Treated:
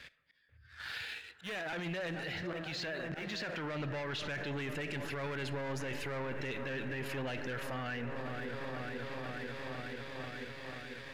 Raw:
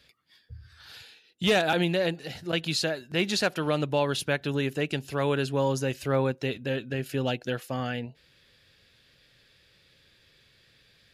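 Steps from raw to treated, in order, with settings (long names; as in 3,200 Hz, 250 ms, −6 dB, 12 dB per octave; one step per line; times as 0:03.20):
high-shelf EQ 4,700 Hz −7 dB
soft clipping −26.5 dBFS, distortion −10 dB
parametric band 1,900 Hz +11.5 dB 1.3 octaves
volume swells 648 ms
0:02.33–0:04.55: low-pass filter 6,800 Hz 24 dB per octave
delay with a low-pass on its return 490 ms, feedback 78%, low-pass 1,700 Hz, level −14.5 dB
leveller curve on the samples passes 1
convolution reverb RT60 1.2 s, pre-delay 5 ms, DRR 16 dB
brickwall limiter −36 dBFS, peak gain reduction 20 dB
level +4 dB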